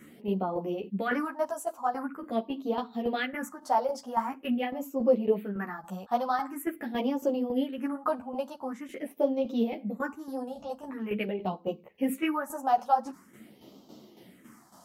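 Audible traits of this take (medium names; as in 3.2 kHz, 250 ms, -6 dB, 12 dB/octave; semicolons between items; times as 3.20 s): phasing stages 4, 0.45 Hz, lowest notch 330–1800 Hz; tremolo saw down 3.6 Hz, depth 65%; a shimmering, thickened sound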